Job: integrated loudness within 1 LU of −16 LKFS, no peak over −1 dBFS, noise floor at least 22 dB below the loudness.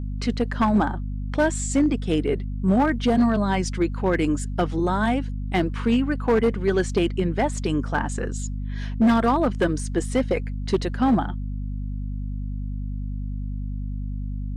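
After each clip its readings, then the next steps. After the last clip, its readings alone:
share of clipped samples 1.1%; peaks flattened at −13.5 dBFS; mains hum 50 Hz; hum harmonics up to 250 Hz; level of the hum −26 dBFS; integrated loudness −24.0 LKFS; sample peak −13.5 dBFS; target loudness −16.0 LKFS
→ clipped peaks rebuilt −13.5 dBFS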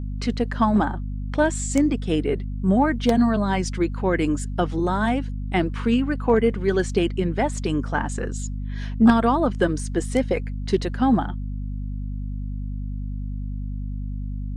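share of clipped samples 0.0%; mains hum 50 Hz; hum harmonics up to 250 Hz; level of the hum −26 dBFS
→ hum removal 50 Hz, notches 5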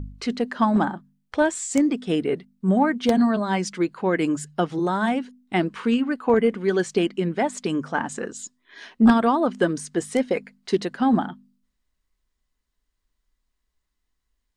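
mains hum none found; integrated loudness −23.0 LKFS; sample peak −4.5 dBFS; target loudness −16.0 LKFS
→ level +7 dB
brickwall limiter −1 dBFS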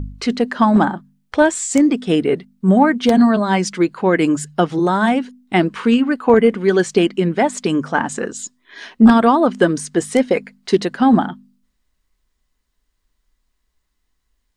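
integrated loudness −16.0 LKFS; sample peak −1.0 dBFS; background noise floor −71 dBFS

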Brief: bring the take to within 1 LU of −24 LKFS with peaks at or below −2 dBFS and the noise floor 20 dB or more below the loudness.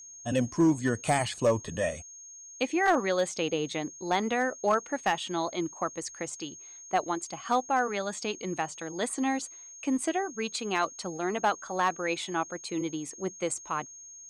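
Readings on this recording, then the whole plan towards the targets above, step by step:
share of clipped samples 0.2%; peaks flattened at −17.0 dBFS; interfering tone 6,500 Hz; level of the tone −45 dBFS; integrated loudness −30.0 LKFS; sample peak −17.0 dBFS; target loudness −24.0 LKFS
→ clipped peaks rebuilt −17 dBFS
notch filter 6,500 Hz, Q 30
level +6 dB

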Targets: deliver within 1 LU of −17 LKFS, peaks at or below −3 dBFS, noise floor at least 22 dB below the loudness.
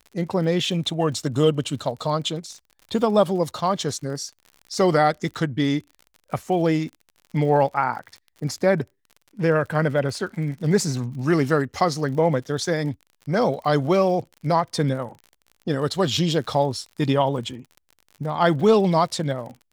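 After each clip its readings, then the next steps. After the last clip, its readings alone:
crackle rate 53 per second; integrated loudness −23.0 LKFS; sample peak −5.0 dBFS; target loudness −17.0 LKFS
→ click removal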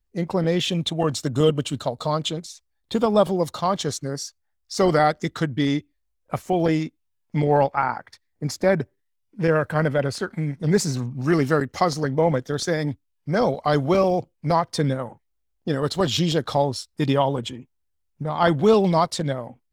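crackle rate 0.71 per second; integrated loudness −23.0 LKFS; sample peak −5.0 dBFS; target loudness −17.0 LKFS
→ level +6 dB
brickwall limiter −3 dBFS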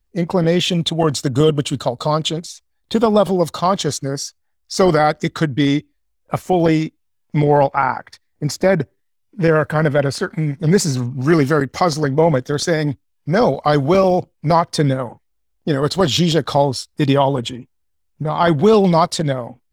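integrated loudness −17.5 LKFS; sample peak −3.0 dBFS; background noise floor −67 dBFS

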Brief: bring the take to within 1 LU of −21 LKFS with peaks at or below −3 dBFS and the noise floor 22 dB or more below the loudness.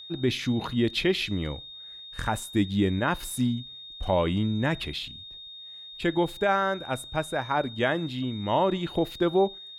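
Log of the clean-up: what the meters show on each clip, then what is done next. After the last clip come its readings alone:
interfering tone 3,700 Hz; level of the tone −41 dBFS; integrated loudness −27.5 LKFS; sample peak −13.0 dBFS; target loudness −21.0 LKFS
→ notch filter 3,700 Hz, Q 30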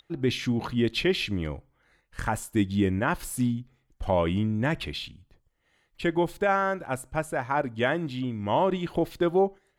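interfering tone none found; integrated loudness −27.5 LKFS; sample peak −12.5 dBFS; target loudness −21.0 LKFS
→ level +6.5 dB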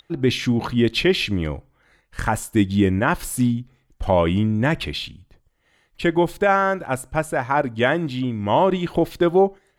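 integrated loudness −21.0 LKFS; sample peak −6.0 dBFS; background noise floor −65 dBFS

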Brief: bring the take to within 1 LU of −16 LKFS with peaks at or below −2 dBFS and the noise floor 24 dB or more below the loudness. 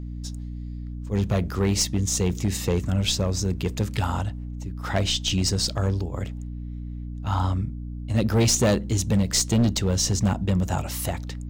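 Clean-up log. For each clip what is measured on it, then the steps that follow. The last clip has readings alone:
share of clipped samples 1.5%; peaks flattened at −15.0 dBFS; mains hum 60 Hz; hum harmonics up to 300 Hz; level of the hum −31 dBFS; integrated loudness −24.5 LKFS; sample peak −15.0 dBFS; target loudness −16.0 LKFS
→ clipped peaks rebuilt −15 dBFS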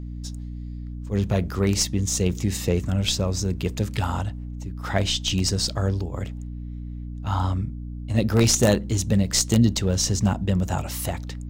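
share of clipped samples 0.0%; mains hum 60 Hz; hum harmonics up to 300 Hz; level of the hum −30 dBFS
→ hum removal 60 Hz, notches 5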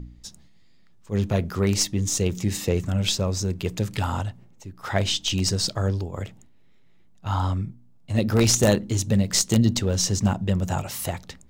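mains hum none found; integrated loudness −24.0 LKFS; sample peak −5.5 dBFS; target loudness −16.0 LKFS
→ level +8 dB
brickwall limiter −2 dBFS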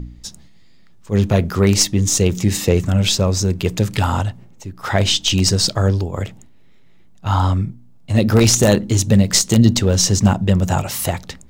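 integrated loudness −16.5 LKFS; sample peak −2.0 dBFS; background noise floor −43 dBFS

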